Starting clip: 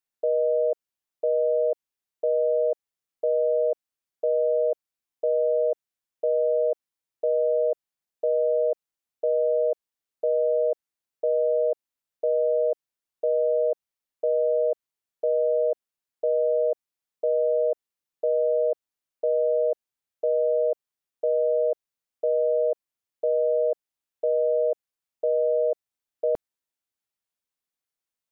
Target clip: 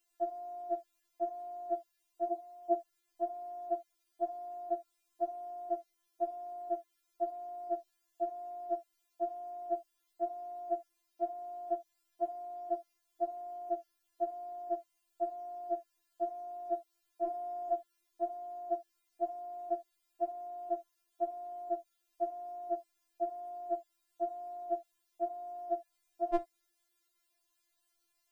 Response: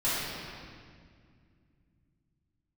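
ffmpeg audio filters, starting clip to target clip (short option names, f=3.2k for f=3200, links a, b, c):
-filter_complex "[0:a]asettb=1/sr,asplit=3[a][b][c];[a]atrim=end=2.324[d];[b]atrim=start=2.32:end=2.72,asetpts=PTS-STARTPTS,afade=t=in:d=0.004:c=qsin,afade=t=out:st=0.396:d=0.004:c=qsin,equalizer=f=410:t=o:w=1.6:g=-13[e];[c]atrim=start=2.716[f];[d][e]acrossfade=d=0.004:c1=hsin:c2=qsin[g];[g][f]acrossfade=d=0.004:c1=qsin:c2=hsin,asettb=1/sr,asplit=3[h][i][j];[h]atrim=end=17.264[k];[i]atrim=start=17.26:end=17.72,asetpts=PTS-STARTPTS,afade=t=in:d=0.004:c=qsin,afade=t=out:st=0.456:d=0.004:c=qsin,aecho=1:1:6.4:0.56,atrim=end_sample=20286[l];[j]atrim=start=17.716[m];[k][l]acrossfade=d=0.004:c1=hsin:c2=qsin[n];[n][m]acrossfade=d=0.004:c1=qsin:c2=hsin,asplit=2[o][p];[1:a]atrim=start_sample=2205,atrim=end_sample=3087[q];[p][q]afir=irnorm=-1:irlink=0,volume=-19dB[r];[o][r]amix=inputs=2:normalize=0,afftfilt=real='re*4*eq(mod(b,16),0)':imag='im*4*eq(mod(b,16),0)':win_size=2048:overlap=0.75,volume=11.5dB"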